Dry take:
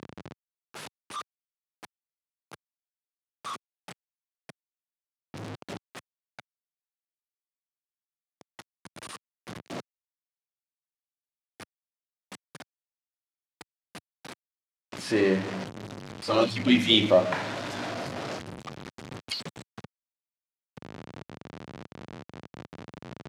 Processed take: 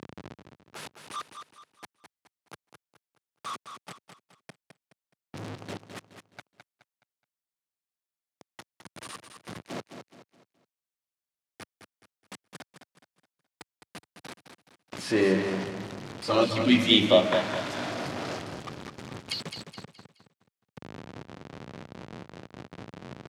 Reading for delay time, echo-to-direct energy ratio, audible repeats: 211 ms, −7.5 dB, 4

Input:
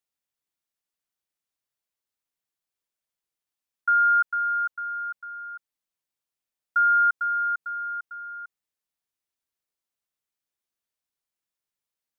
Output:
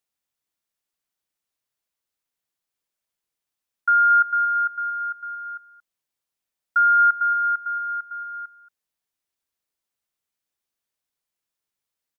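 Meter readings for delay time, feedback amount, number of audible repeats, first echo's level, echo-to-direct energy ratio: 227 ms, repeats not evenly spaced, 1, −16.5 dB, −16.5 dB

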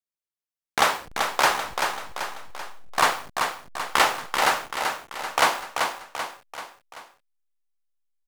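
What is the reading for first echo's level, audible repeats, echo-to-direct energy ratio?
−5.5 dB, 4, −4.5 dB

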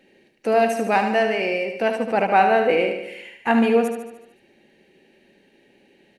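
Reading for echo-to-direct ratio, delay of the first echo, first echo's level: −5.5 dB, 74 ms, −7.0 dB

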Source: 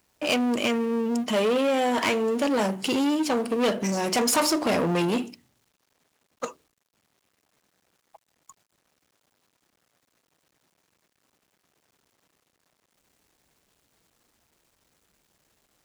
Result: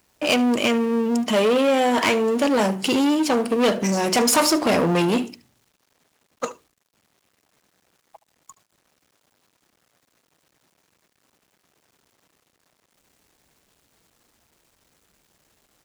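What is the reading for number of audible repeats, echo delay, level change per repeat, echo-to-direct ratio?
1, 73 ms, repeats not evenly spaced, −19.5 dB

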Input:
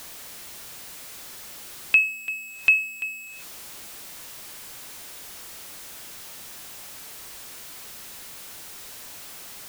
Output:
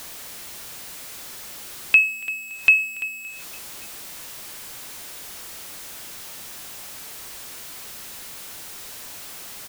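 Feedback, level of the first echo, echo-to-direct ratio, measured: 60%, −23.0 dB, −21.0 dB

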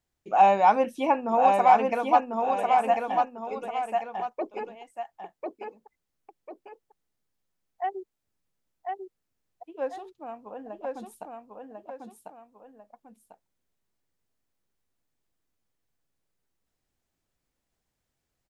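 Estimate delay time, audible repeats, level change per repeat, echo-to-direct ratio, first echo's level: 1,046 ms, 2, −8.0 dB, −3.0 dB, −3.5 dB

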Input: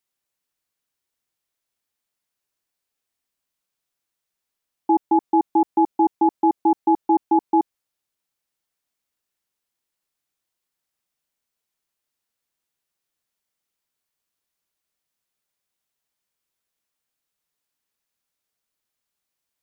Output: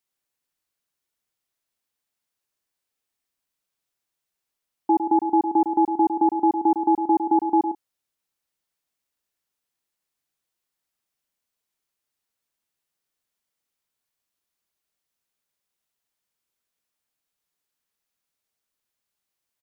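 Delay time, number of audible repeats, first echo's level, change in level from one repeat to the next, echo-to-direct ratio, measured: 106 ms, 2, −8.5 dB, repeats not evenly spaced, −8.0 dB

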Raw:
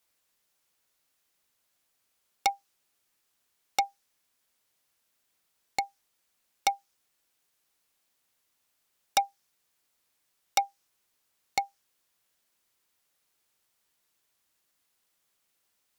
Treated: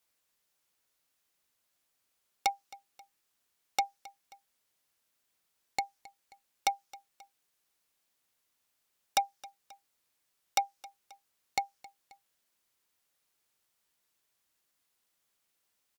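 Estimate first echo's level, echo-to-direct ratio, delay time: −21.0 dB, −20.0 dB, 267 ms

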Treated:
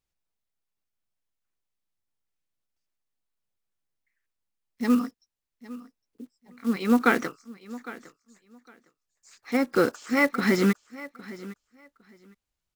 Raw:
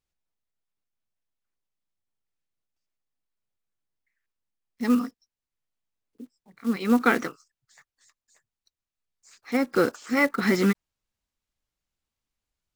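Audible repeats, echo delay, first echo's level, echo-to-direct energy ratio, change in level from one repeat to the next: 2, 808 ms, −18.0 dB, −18.0 dB, −15.0 dB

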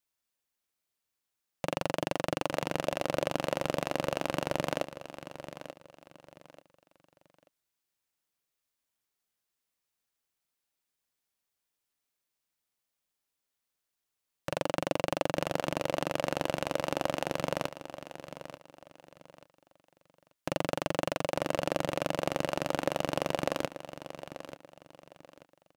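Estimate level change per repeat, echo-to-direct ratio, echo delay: −11.0 dB, −12.0 dB, 886 ms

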